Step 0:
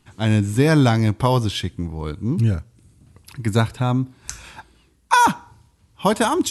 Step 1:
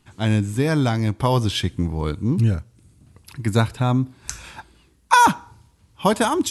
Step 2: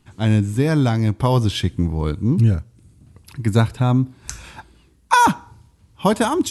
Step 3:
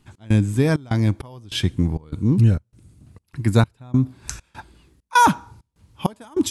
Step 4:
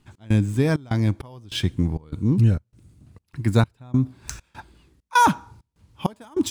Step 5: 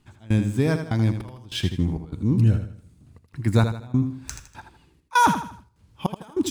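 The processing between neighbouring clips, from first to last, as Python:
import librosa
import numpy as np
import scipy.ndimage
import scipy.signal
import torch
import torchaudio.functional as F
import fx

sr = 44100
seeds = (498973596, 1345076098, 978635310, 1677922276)

y1 = fx.rider(x, sr, range_db=5, speed_s=0.5)
y1 = F.gain(torch.from_numpy(y1), -1.0).numpy()
y2 = fx.low_shelf(y1, sr, hz=460.0, db=4.5)
y2 = F.gain(torch.from_numpy(y2), -1.0).numpy()
y3 = fx.step_gate(y2, sr, bpm=99, pattern='x.xxx.xx..xxx.xx', floor_db=-24.0, edge_ms=4.5)
y4 = scipy.signal.medfilt(y3, 3)
y4 = F.gain(torch.from_numpy(y4), -2.0).numpy()
y5 = fx.echo_feedback(y4, sr, ms=80, feedback_pct=37, wet_db=-8.5)
y5 = F.gain(torch.from_numpy(y5), -1.5).numpy()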